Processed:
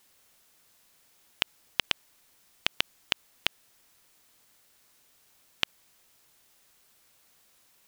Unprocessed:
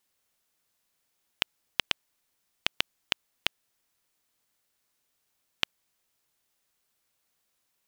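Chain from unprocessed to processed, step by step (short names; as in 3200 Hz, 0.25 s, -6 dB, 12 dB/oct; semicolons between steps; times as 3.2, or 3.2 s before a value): maximiser +14.5 dB; gain -1.5 dB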